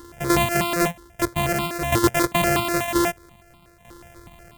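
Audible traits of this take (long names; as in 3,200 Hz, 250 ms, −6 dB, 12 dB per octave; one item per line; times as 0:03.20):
a buzz of ramps at a fixed pitch in blocks of 128 samples
tremolo saw down 0.52 Hz, depth 65%
notches that jump at a steady rate 8.2 Hz 670–1,700 Hz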